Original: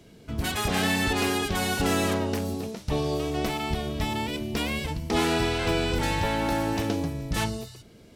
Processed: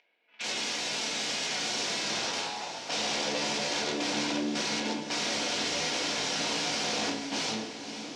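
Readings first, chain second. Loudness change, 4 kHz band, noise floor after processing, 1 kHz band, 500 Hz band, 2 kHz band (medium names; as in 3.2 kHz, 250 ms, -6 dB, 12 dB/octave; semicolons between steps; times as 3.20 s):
-3.0 dB, +3.0 dB, -43 dBFS, -5.5 dB, -7.0 dB, -2.5 dB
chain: spectral levelling over time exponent 0.6; gate -25 dBFS, range -9 dB; level-controlled noise filter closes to 470 Hz, open at -18.5 dBFS; bass shelf 450 Hz -8.5 dB; hum notches 50/100/150/200/250/300/350/400 Hz; peak limiter -17.5 dBFS, peak gain reduction 5 dB; upward compressor, threshold -47 dBFS; high-pass sweep 2.3 kHz -> 260 Hz, 1.26–4.30 s; integer overflow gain 25.5 dB; cabinet simulation 200–6200 Hz, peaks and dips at 1.2 kHz -8 dB, 1.8 kHz -5 dB, 5.7 kHz +3 dB; echo that smears into a reverb 543 ms, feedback 58%, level -10 dB; simulated room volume 330 m³, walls furnished, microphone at 1.8 m; trim -1 dB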